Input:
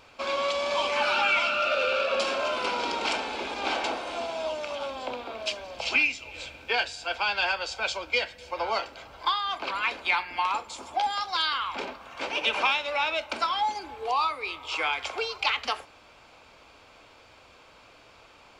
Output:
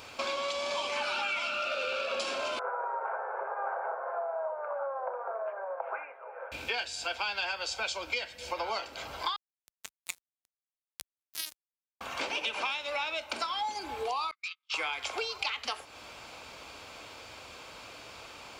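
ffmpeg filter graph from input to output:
-filter_complex "[0:a]asettb=1/sr,asplit=3[s0][s1][s2];[s0]atrim=end=2.594[s3];[s1]atrim=start=2.59:end=6.52,asetpts=PTS-STARTPTS,afade=t=in:d=0.004:c=qsin,afade=t=out:st=3.926:d=0.004:c=qsin,asuperpass=centerf=860:order=12:qfactor=0.73,aecho=1:1:7.5:0.41,atrim=end_sample=173313[s4];[s2]atrim=start=6.516[s5];[s3][s4]acrossfade=d=0.004:c1=hsin:c2=qsin[s6];[s6][s5]acrossfade=d=0.004:c1=qsin:c2=hsin,asettb=1/sr,asplit=3[s7][s8][s9];[s7]atrim=end=9.364[s10];[s8]atrim=start=9.36:end=12.01,asetpts=PTS-STARTPTS,afade=t=in:d=0.004:c=qsin,afade=t=out:st=2.646:d=0.004:c=qsin,aderivative,bandreject=f=790:w=8.1,acrusher=bits=3:mix=0:aa=0.5[s11];[s9]atrim=start=12.006[s12];[s10][s11]acrossfade=d=0.004:c1=hsin:c2=qsin[s13];[s13][s12]acrossfade=d=0.004:c1=qsin:c2=hsin,asettb=1/sr,asplit=3[s14][s15][s16];[s14]atrim=end=14.314[s17];[s15]atrim=start=14.31:end=14.74,asetpts=PTS-STARTPTS,afade=t=in:d=0.004:c=qsin,afade=t=out:st=0.426:d=0.004:c=qsin,agate=range=0.00447:threshold=0.0224:ratio=16:release=100:detection=peak,asoftclip=type=hard:threshold=0.0188,asuperpass=centerf=2900:order=8:qfactor=0.61[s18];[s16]atrim=start=14.736[s19];[s17][s18]acrossfade=d=0.004:c1=hsin:c2=qsin[s20];[s20][s19]acrossfade=d=0.004:c1=qsin:c2=hsin,highpass=47,highshelf=f=5100:g=9.5,acompressor=threshold=0.0126:ratio=4,volume=1.78"

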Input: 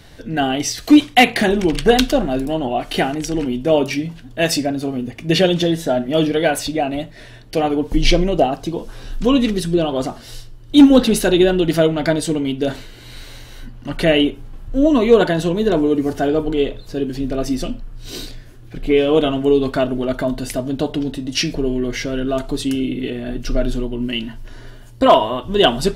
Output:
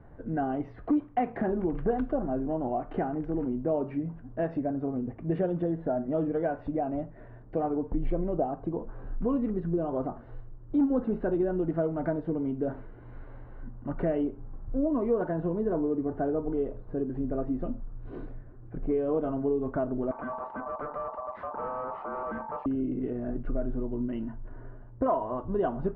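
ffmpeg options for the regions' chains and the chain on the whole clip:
-filter_complex "[0:a]asettb=1/sr,asplit=3[s0][s1][s2];[s0]atrim=end=20.114[s3];[s1]atrim=start=20.11:end=22.66,asetpts=PTS-STARTPTS,afade=t=in:d=0.004:c=qsin,afade=t=out:st=2.546:d=0.004:c=qsin,bandreject=f=50:t=h:w=6,bandreject=f=100:t=h:w=6,bandreject=f=150:t=h:w=6,bandreject=f=200:t=h:w=6,bandreject=f=250:t=h:w=6,bandreject=f=300:t=h:w=6,aeval=exprs='val(0)*sin(2*PI*890*n/s)':c=same,volume=14.1,asoftclip=hard,volume=0.0708[s4];[s2]atrim=start=22.656[s5];[s3][s4]acrossfade=d=0.004:c1=hsin:c2=qsin[s6];[s6][s5]acrossfade=d=0.004:c1=qsin:c2=hsin,lowpass=f=1300:w=0.5412,lowpass=f=1300:w=1.3066,acompressor=threshold=0.0891:ratio=2.5,volume=0.473"

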